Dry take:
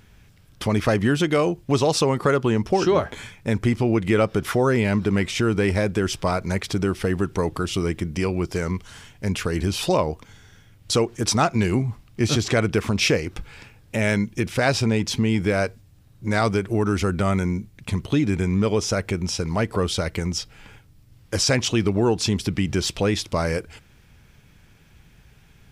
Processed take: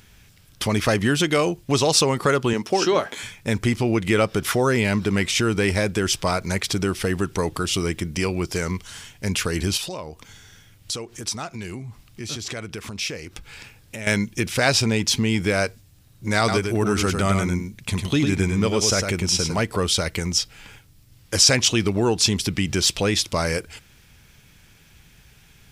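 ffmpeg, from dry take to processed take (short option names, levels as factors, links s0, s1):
-filter_complex "[0:a]asettb=1/sr,asplit=3[s0][s1][s2];[s0]atrim=end=2.534[s3];[s1]atrim=start=2.53:end=3.22,asetpts=PTS-STARTPTS,afade=t=in:d=0.004:c=qsin,afade=t=out:st=0.686:d=0.004:c=qsin,highpass=210[s4];[s2]atrim=start=3.216[s5];[s3][s4]acrossfade=d=0.004:c1=hsin:c2=qsin[s6];[s6][s5]acrossfade=d=0.004:c1=qsin:c2=hsin,asettb=1/sr,asplit=3[s7][s8][s9];[s7]atrim=end=9.774[s10];[s8]atrim=start=9.77:end=14.07,asetpts=PTS-STARTPTS,afade=t=in:d=0.004:c=qsin,afade=t=out:st=4.296:d=0.004:c=qsin,acompressor=threshold=0.0112:ratio=2:attack=3.2:release=140:knee=1:detection=peak[s11];[s9]atrim=start=14.066[s12];[s10][s11]acrossfade=d=0.004:c1=hsin:c2=qsin[s13];[s13][s12]acrossfade=d=0.004:c1=qsin:c2=hsin,asettb=1/sr,asplit=3[s14][s15][s16];[s14]atrim=end=16.384[s17];[s15]atrim=start=16.38:end=19.6,asetpts=PTS-STARTPTS,afade=t=in:d=0.004:c=qsin,afade=t=out:st=3.216:d=0.004:c=qsin,aecho=1:1:102:0.531,atrim=end_sample=142002[s18];[s16]atrim=start=19.596[s19];[s17][s18]acrossfade=d=0.004:c1=hsin:c2=qsin[s20];[s20][s19]acrossfade=d=0.004:c1=qsin:c2=hsin,highshelf=f=2200:g=9.5,volume=0.891"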